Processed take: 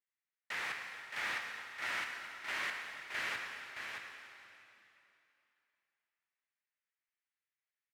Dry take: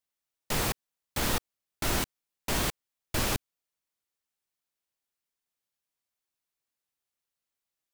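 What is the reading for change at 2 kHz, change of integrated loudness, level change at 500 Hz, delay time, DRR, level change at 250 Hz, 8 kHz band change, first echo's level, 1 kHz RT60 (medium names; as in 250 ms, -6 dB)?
+1.0 dB, -8.0 dB, -16.5 dB, 621 ms, -0.5 dB, -23.0 dB, -18.0 dB, -5.5 dB, 2.9 s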